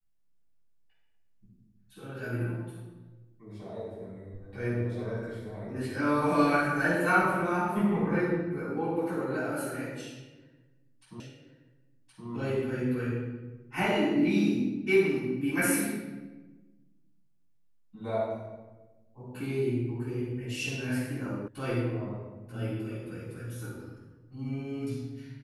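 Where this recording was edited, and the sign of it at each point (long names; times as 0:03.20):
0:11.20: the same again, the last 1.07 s
0:21.48: cut off before it has died away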